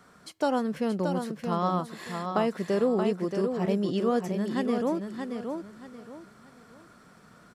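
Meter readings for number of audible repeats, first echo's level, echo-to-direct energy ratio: 3, -6.0 dB, -5.5 dB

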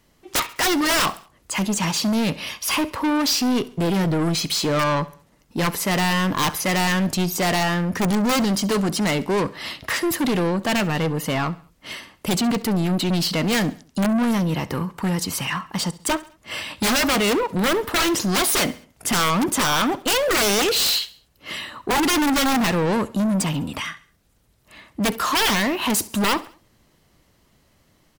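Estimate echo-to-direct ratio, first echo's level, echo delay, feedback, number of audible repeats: -19.0 dB, -20.0 dB, 68 ms, 46%, 3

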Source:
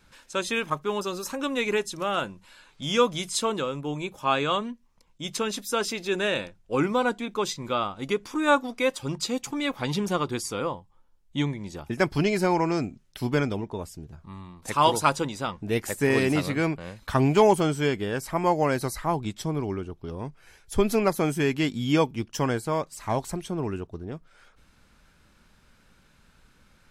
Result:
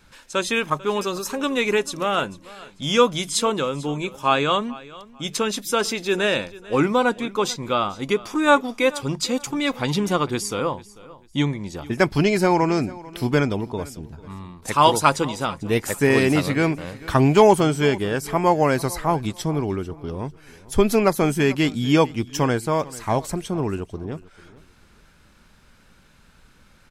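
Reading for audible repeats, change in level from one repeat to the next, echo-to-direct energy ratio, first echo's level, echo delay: 2, -11.5 dB, -19.5 dB, -20.0 dB, 0.444 s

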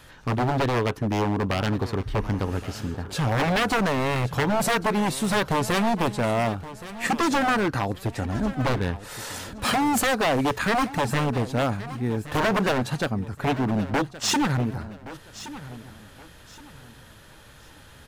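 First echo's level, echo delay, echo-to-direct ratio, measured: -15.5 dB, 1.121 s, -15.0 dB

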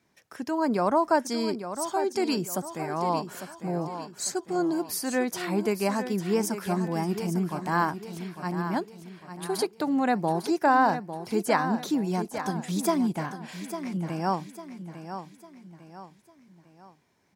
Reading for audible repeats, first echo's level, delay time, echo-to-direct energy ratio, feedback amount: 4, -10.0 dB, 0.851 s, -9.0 dB, 41%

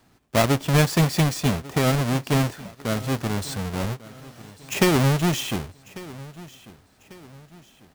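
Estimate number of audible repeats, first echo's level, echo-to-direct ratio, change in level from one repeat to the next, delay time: 3, -19.5 dB, -18.5 dB, -7.5 dB, 1.145 s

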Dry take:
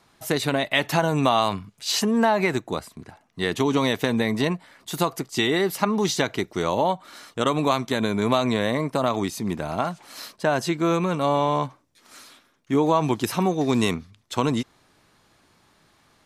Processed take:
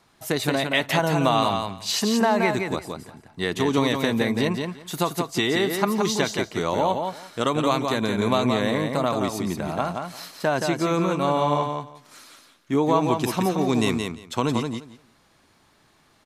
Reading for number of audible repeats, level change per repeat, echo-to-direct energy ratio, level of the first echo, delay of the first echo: 2, -16.0 dB, -5.0 dB, -5.0 dB, 0.173 s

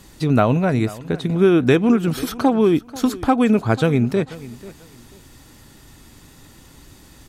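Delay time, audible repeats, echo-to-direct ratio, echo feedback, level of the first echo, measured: 0.489 s, 2, -18.0 dB, 24%, -18.5 dB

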